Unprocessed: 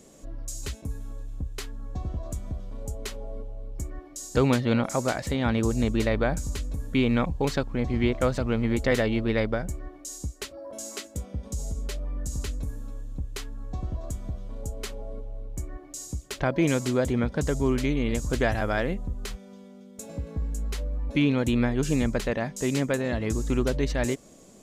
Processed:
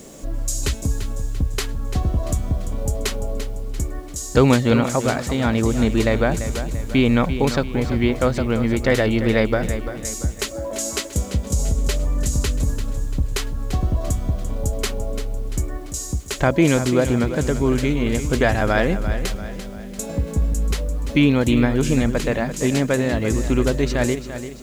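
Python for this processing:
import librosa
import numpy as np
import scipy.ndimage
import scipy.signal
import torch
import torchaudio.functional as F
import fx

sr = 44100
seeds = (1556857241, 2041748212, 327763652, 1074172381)

y = fx.rider(x, sr, range_db=4, speed_s=2.0)
y = fx.quant_dither(y, sr, seeds[0], bits=10, dither='none')
y = fx.echo_feedback(y, sr, ms=342, feedback_pct=46, wet_db=-11.0)
y = y * librosa.db_to_amplitude(7.5)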